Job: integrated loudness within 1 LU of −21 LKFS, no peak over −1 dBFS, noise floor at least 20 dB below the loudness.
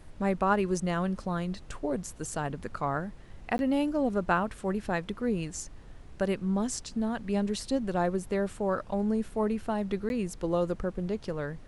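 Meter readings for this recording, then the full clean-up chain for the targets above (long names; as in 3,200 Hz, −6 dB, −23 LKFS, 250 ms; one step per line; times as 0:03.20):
number of dropouts 2; longest dropout 11 ms; background noise floor −48 dBFS; target noise floor −51 dBFS; integrated loudness −31.0 LKFS; sample peak −13.0 dBFS; target loudness −21.0 LKFS
→ repair the gap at 0:03.58/0:10.09, 11 ms
noise reduction from a noise print 6 dB
level +10 dB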